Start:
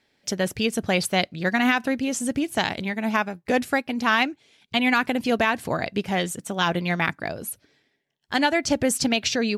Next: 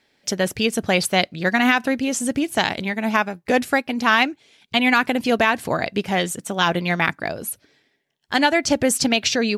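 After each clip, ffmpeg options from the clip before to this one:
ffmpeg -i in.wav -af "equalizer=frequency=69:width=0.37:gain=-3.5,volume=4dB" out.wav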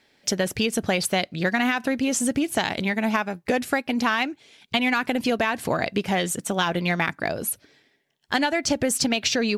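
ffmpeg -i in.wav -filter_complex "[0:a]asplit=2[link_01][link_02];[link_02]asoftclip=type=tanh:threshold=-20.5dB,volume=-12dB[link_03];[link_01][link_03]amix=inputs=2:normalize=0,acompressor=threshold=-19dB:ratio=6" out.wav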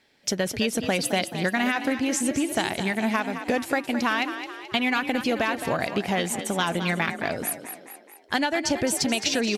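ffmpeg -i in.wav -filter_complex "[0:a]asplit=7[link_01][link_02][link_03][link_04][link_05][link_06][link_07];[link_02]adelay=215,afreqshift=38,volume=-10dB[link_08];[link_03]adelay=430,afreqshift=76,volume=-15.7dB[link_09];[link_04]adelay=645,afreqshift=114,volume=-21.4dB[link_10];[link_05]adelay=860,afreqshift=152,volume=-27dB[link_11];[link_06]adelay=1075,afreqshift=190,volume=-32.7dB[link_12];[link_07]adelay=1290,afreqshift=228,volume=-38.4dB[link_13];[link_01][link_08][link_09][link_10][link_11][link_12][link_13]amix=inputs=7:normalize=0,volume=-1.5dB" -ar 48000 -c:a libmp3lame -b:a 96k out.mp3

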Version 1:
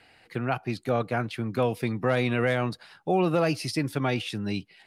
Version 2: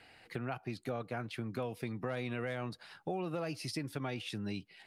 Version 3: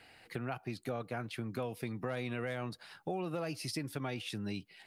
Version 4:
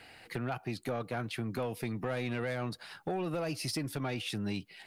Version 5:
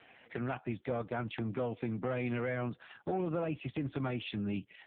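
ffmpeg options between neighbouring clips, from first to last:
ffmpeg -i in.wav -af "acompressor=threshold=-36dB:ratio=3,volume=-2dB" out.wav
ffmpeg -i in.wav -af "highshelf=frequency=10000:gain=7.5" out.wav
ffmpeg -i in.wav -af "asoftclip=type=tanh:threshold=-31.5dB,volume=5dB" out.wav
ffmpeg -i in.wav -af "volume=1dB" -ar 8000 -c:a libopencore_amrnb -b:a 4750 out.amr

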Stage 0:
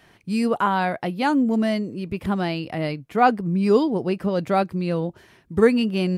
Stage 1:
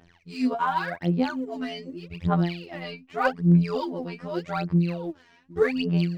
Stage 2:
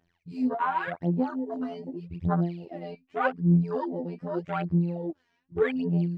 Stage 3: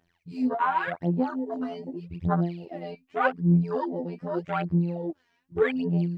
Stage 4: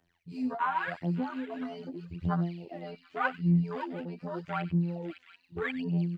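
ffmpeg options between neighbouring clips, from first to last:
ffmpeg -i in.wav -af "lowpass=frequency=6600:width=0.5412,lowpass=frequency=6600:width=1.3066,afftfilt=real='hypot(re,im)*cos(PI*b)':imag='0':win_size=2048:overlap=0.75,aphaser=in_gain=1:out_gain=1:delay=4.3:decay=0.78:speed=0.84:type=sinusoidal,volume=-5dB" out.wav
ffmpeg -i in.wav -filter_complex "[0:a]afwtdn=0.0224,asplit=2[link_01][link_02];[link_02]acompressor=threshold=-31dB:ratio=6,volume=-0.5dB[link_03];[link_01][link_03]amix=inputs=2:normalize=0,volume=-4.5dB" out.wav
ffmpeg -i in.wav -af "lowshelf=frequency=480:gain=-3,volume=3dB" out.wav
ffmpeg -i in.wav -filter_complex "[0:a]acrossover=split=260|810|2000[link_01][link_02][link_03][link_04];[link_02]acompressor=threshold=-39dB:ratio=6[link_05];[link_04]aecho=1:1:93|557|735:0.355|0.501|0.376[link_06];[link_01][link_05][link_03][link_06]amix=inputs=4:normalize=0,volume=-3dB" out.wav

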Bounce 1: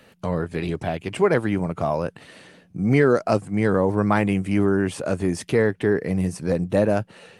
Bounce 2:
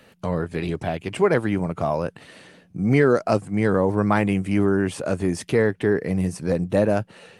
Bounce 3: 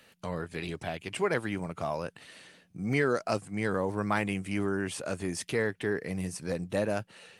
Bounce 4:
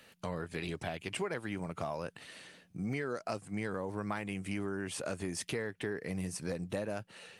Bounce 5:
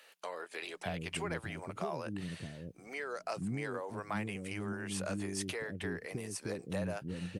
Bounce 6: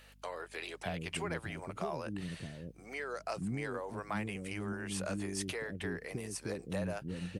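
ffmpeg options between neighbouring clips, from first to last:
ffmpeg -i in.wav -af anull out.wav
ffmpeg -i in.wav -af "tiltshelf=frequency=1300:gain=-5,volume=-6.5dB" out.wav
ffmpeg -i in.wav -af "acompressor=threshold=-33dB:ratio=6" out.wav
ffmpeg -i in.wav -filter_complex "[0:a]acrossover=split=390[link_01][link_02];[link_01]adelay=620[link_03];[link_03][link_02]amix=inputs=2:normalize=0" out.wav
ffmpeg -i in.wav -af "aeval=exprs='val(0)+0.000891*(sin(2*PI*50*n/s)+sin(2*PI*2*50*n/s)/2+sin(2*PI*3*50*n/s)/3+sin(2*PI*4*50*n/s)/4+sin(2*PI*5*50*n/s)/5)':channel_layout=same" out.wav

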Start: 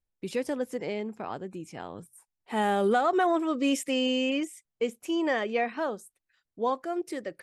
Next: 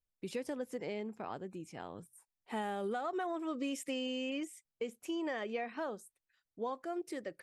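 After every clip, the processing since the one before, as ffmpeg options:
ffmpeg -i in.wav -af "acompressor=threshold=-28dB:ratio=6,volume=-6dB" out.wav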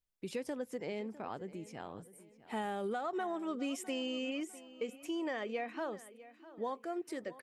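ffmpeg -i in.wav -filter_complex "[0:a]asplit=2[link_01][link_02];[link_02]adelay=653,lowpass=frequency=4600:poles=1,volume=-17dB,asplit=2[link_03][link_04];[link_04]adelay=653,lowpass=frequency=4600:poles=1,volume=0.41,asplit=2[link_05][link_06];[link_06]adelay=653,lowpass=frequency=4600:poles=1,volume=0.41[link_07];[link_01][link_03][link_05][link_07]amix=inputs=4:normalize=0" out.wav

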